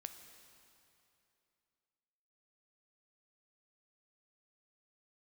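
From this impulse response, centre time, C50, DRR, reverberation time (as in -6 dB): 35 ms, 8.0 dB, 7.0 dB, 2.8 s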